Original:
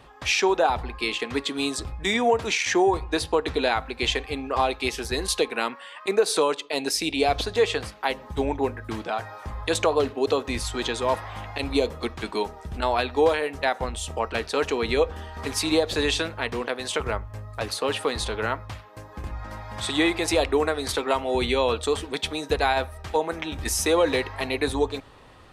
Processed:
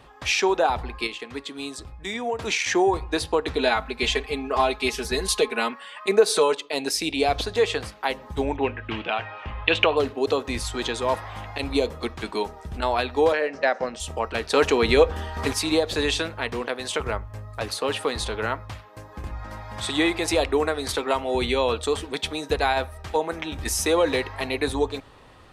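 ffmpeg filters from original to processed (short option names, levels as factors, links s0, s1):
-filter_complex "[0:a]asettb=1/sr,asplit=3[s0][s1][s2];[s0]atrim=end=3.594[s3];[s1]atrim=start=3.59:end=6.57,asetpts=PTS-STARTPTS,afade=t=in:d=0.004:c=qsin,afade=t=out:st=2.976:d=0.004:c=qsin,aecho=1:1:4.7:0.65,atrim=end_sample=131418[s4];[s2]atrim=start=6.566[s5];[s3][s4]acrossfade=d=0.004:c1=hsin:c2=qsin[s6];[s6][s5]acrossfade=d=0.004:c1=qsin:c2=hsin,asettb=1/sr,asplit=3[s7][s8][s9];[s7]atrim=end=8.564[s10];[s8]atrim=start=8.56:end=9.97,asetpts=PTS-STARTPTS,afade=t=in:d=0.004:c=qsin,afade=t=out:st=1.406:d=0.004:c=qsin,lowpass=f=2800:t=q:w=5.3[s11];[s9]atrim=start=9.966[s12];[s10][s11]acrossfade=d=0.004:c1=hsin:c2=qsin[s13];[s13][s12]acrossfade=d=0.004:c1=qsin:c2=hsin,asettb=1/sr,asplit=3[s14][s15][s16];[s14]atrim=end=13.324[s17];[s15]atrim=start=13.32:end=14,asetpts=PTS-STARTPTS,afade=t=in:d=0.004:c=qsin,afade=t=out:st=0.676:d=0.004:c=qsin,highpass=200,equalizer=f=220:t=q:w=4:g=5,equalizer=f=570:t=q:w=4:g=8,equalizer=f=910:t=q:w=4:g=-4,equalizer=f=1700:t=q:w=4:g=4,equalizer=f=3500:t=q:w=4:g=-9,equalizer=f=5400:t=q:w=4:g=7,lowpass=f=6200:w=0.5412,lowpass=f=6200:w=1.3066[s18];[s16]atrim=start=13.996[s19];[s17][s18]acrossfade=d=0.004:c1=hsin:c2=qsin[s20];[s20][s19]acrossfade=d=0.004:c1=qsin:c2=hsin,asettb=1/sr,asplit=3[s21][s22][s23];[s21]atrim=end=14.504[s24];[s22]atrim=start=14.5:end=15.53,asetpts=PTS-STARTPTS,afade=t=in:d=0.004:c=qsin,afade=t=out:st=1.026:d=0.004:c=qsin,acontrast=38[s25];[s23]atrim=start=15.526[s26];[s24][s25]acrossfade=d=0.004:c1=hsin:c2=qsin[s27];[s27][s26]acrossfade=d=0.004:c1=qsin:c2=hsin,asplit=3[s28][s29][s30];[s28]atrim=end=1.072[s31];[s29]atrim=start=1.068:end=2.392,asetpts=PTS-STARTPTS,volume=0.447[s32];[s30]atrim=start=2.388[s33];[s31][s32]acrossfade=d=0.004:c1=hsin:c2=hsin[s34];[s34][s33]acrossfade=d=0.004:c1=hsin:c2=hsin"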